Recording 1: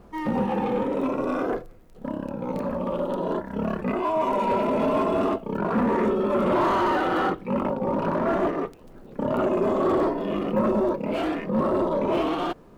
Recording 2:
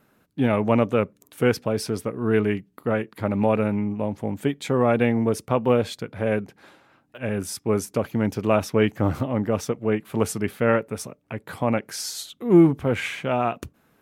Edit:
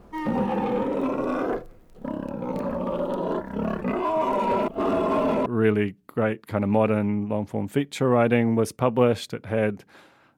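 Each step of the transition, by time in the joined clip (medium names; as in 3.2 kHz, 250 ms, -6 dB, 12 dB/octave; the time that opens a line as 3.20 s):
recording 1
4.68–5.46 s: reverse
5.46 s: go over to recording 2 from 2.15 s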